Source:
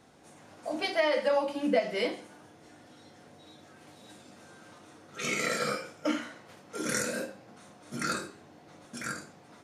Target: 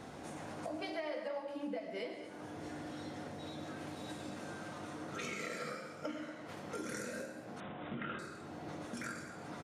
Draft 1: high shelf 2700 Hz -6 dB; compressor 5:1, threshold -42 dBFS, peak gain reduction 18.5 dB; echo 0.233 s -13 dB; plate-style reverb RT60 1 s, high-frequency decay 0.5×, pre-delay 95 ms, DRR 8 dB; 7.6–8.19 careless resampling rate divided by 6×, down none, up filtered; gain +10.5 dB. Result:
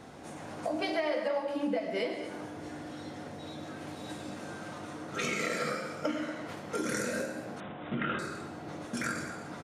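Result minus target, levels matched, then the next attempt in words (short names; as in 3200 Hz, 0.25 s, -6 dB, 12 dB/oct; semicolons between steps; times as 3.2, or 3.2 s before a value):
compressor: peak gain reduction -9 dB
high shelf 2700 Hz -6 dB; compressor 5:1, threshold -53.5 dBFS, peak gain reduction 28 dB; echo 0.233 s -13 dB; plate-style reverb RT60 1 s, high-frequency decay 0.5×, pre-delay 95 ms, DRR 8 dB; 7.6–8.19 careless resampling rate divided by 6×, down none, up filtered; gain +10.5 dB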